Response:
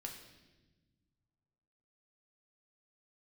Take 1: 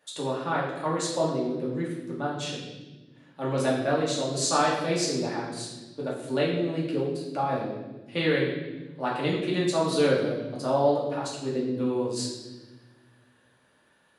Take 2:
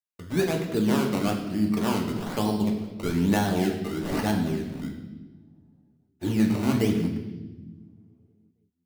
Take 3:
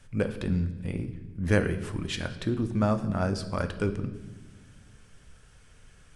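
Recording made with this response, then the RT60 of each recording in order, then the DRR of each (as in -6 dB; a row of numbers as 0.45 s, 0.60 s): 2; 1.2 s, 1.2 s, no single decay rate; -6.0 dB, 1.0 dB, 8.0 dB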